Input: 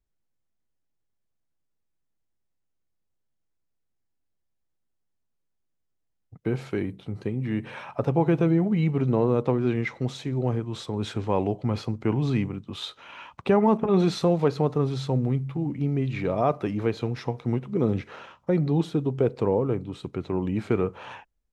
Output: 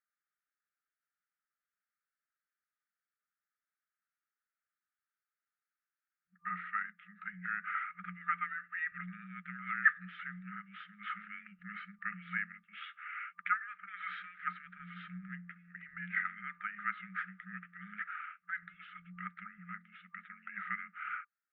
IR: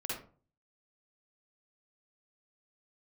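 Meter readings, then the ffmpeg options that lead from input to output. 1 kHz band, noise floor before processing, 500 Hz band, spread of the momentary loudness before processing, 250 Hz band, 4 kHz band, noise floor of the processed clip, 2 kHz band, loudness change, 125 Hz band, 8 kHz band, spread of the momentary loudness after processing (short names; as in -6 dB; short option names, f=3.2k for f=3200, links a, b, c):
-8.0 dB, -76 dBFS, under -40 dB, 12 LU, -26.5 dB, -18.0 dB, under -85 dBFS, +5.0 dB, -13.5 dB, -28.5 dB, n/a, 13 LU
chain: -af "equalizer=f=150:t=o:w=0.2:g=8.5,afftfilt=real='re*(1-between(b*sr/4096,130,1500))':imag='im*(1-between(b*sr/4096,130,1500))':win_size=4096:overlap=0.75,highpass=f=290:t=q:w=0.5412,highpass=f=290:t=q:w=1.307,lowpass=f=2.2k:t=q:w=0.5176,lowpass=f=2.2k:t=q:w=0.7071,lowpass=f=2.2k:t=q:w=1.932,afreqshift=-310,volume=8.5dB"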